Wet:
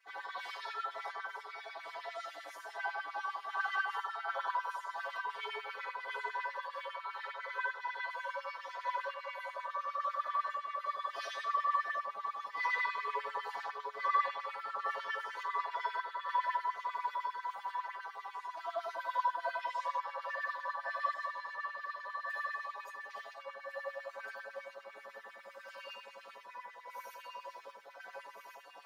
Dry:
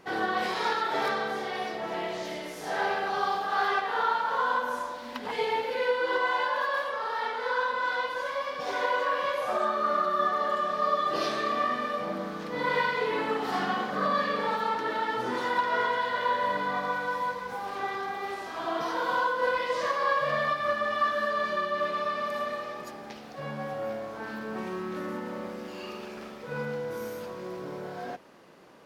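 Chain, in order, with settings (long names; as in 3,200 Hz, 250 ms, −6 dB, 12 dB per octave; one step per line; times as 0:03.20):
reversed playback
upward compression, threshold −30 dBFS
reversed playback
stiff-string resonator 100 Hz, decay 0.68 s, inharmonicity 0.008
sample-and-hold tremolo
delay that swaps between a low-pass and a high-pass 702 ms, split 1,000 Hz, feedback 61%, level −3 dB
auto-filter high-pass sine 10 Hz 600–2,400 Hz
level +1 dB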